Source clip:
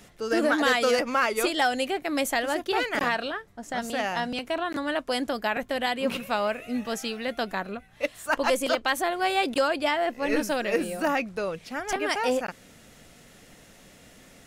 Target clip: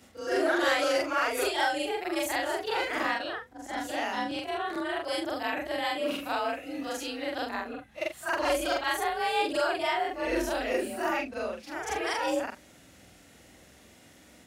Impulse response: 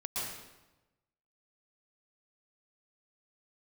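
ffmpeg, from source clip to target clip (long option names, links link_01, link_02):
-af "afftfilt=real='re':imag='-im':win_size=4096:overlap=0.75,afreqshift=46,volume=1dB"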